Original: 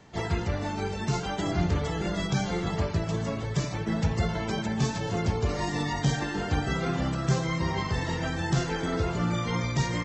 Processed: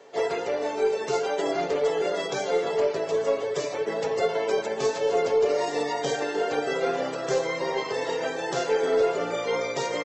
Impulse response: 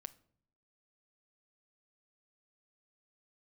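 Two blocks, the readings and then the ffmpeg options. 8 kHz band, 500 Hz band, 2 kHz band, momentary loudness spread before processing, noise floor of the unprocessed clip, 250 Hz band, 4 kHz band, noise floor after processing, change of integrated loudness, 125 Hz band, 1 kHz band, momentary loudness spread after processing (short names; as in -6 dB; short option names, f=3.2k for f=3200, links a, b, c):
+1.0 dB, +10.5 dB, +1.5 dB, 3 LU, -34 dBFS, -6.5 dB, +1.0 dB, -33 dBFS, +2.5 dB, -18.5 dB, +3.5 dB, 5 LU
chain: -af "highpass=f=470:t=q:w=4.4,aecho=1:1:7.2:0.45,aeval=exprs='0.251*(cos(1*acos(clip(val(0)/0.251,-1,1)))-cos(1*PI/2))+0.00501*(cos(2*acos(clip(val(0)/0.251,-1,1)))-cos(2*PI/2))':c=same"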